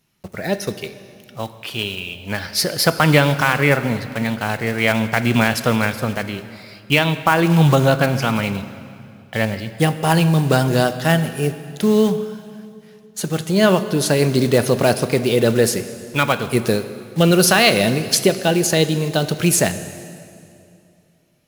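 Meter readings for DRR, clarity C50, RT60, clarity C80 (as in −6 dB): 11.0 dB, 12.0 dB, 2.6 s, 13.0 dB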